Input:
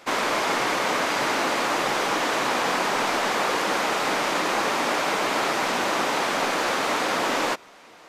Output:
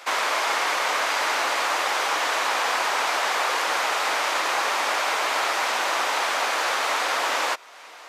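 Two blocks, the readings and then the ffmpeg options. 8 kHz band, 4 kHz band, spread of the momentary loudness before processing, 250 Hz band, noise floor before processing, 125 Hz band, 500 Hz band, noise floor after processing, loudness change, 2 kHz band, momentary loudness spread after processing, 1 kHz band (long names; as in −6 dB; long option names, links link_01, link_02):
+1.5 dB, +1.5 dB, 0 LU, −13.0 dB, −49 dBFS, below −20 dB, −3.5 dB, −44 dBFS, +0.5 dB, +1.5 dB, 0 LU, +0.5 dB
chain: -filter_complex "[0:a]highpass=680,asplit=2[link_01][link_02];[link_02]acompressor=threshold=-39dB:ratio=6,volume=1dB[link_03];[link_01][link_03]amix=inputs=2:normalize=0"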